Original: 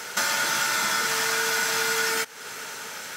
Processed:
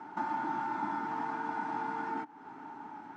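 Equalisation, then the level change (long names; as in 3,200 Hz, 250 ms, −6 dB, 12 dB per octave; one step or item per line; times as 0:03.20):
pair of resonant band-passes 510 Hz, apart 1.5 octaves
spectral tilt −4 dB per octave
+2.5 dB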